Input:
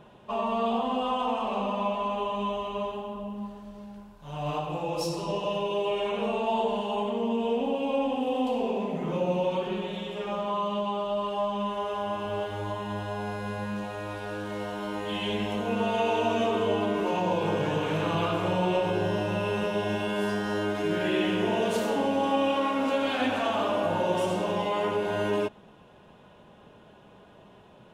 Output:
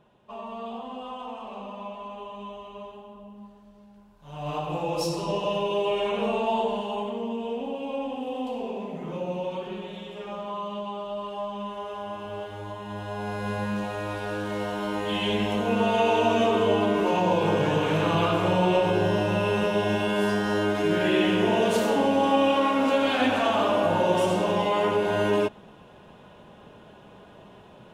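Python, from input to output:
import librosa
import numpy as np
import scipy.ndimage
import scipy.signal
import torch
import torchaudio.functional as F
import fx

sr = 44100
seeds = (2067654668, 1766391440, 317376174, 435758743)

y = fx.gain(x, sr, db=fx.line((3.93, -9.0), (4.72, 2.5), (6.38, 2.5), (7.43, -4.0), (12.79, -4.0), (13.51, 4.0)))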